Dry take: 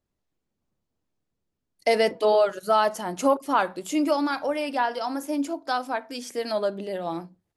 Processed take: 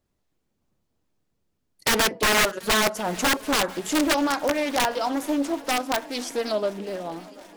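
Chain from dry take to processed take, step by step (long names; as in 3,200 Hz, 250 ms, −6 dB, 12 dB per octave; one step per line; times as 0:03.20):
fade-out on the ending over 1.31 s
in parallel at −1 dB: downward compressor 6 to 1, threshold −31 dBFS, peak gain reduction 14.5 dB
on the sum: wrap-around overflow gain 14.5 dB
feedback echo with a long and a short gap by turns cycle 736 ms, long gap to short 1.5 to 1, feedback 67%, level −22 dB
highs frequency-modulated by the lows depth 0.47 ms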